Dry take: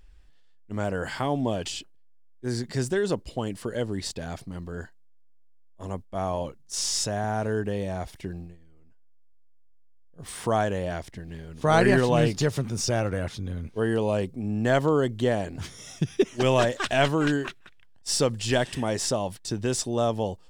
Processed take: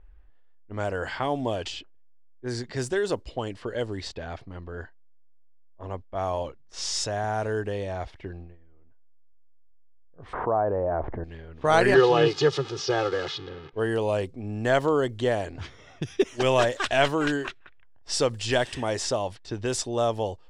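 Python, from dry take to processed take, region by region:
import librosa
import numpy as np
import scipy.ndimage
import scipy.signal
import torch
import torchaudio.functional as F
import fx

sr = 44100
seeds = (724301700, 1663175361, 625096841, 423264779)

y = fx.chain(x, sr, fx.lowpass(hz=1100.0, slope=24),
    fx.low_shelf(hz=260.0, db=-6.5),
    fx.env_flatten(amount_pct=70), at=(10.33, 11.24))
y = fx.chain(y, sr, fx.crossing_spikes(level_db=-22.0),
    fx.cabinet(low_hz=140.0, low_slope=24, high_hz=4800.0, hz=(150.0, 240.0, 390.0, 1200.0, 2200.0, 3200.0), db=(7, -6, 5, 5, -5, 3)),
    fx.comb(ms=2.4, depth=0.73), at=(11.94, 13.73))
y = fx.high_shelf(y, sr, hz=8200.0, db=-5.0)
y = fx.env_lowpass(y, sr, base_hz=1400.0, full_db=-22.0)
y = fx.peak_eq(y, sr, hz=180.0, db=-10.0, octaves=1.1)
y = F.gain(torch.from_numpy(y), 1.5).numpy()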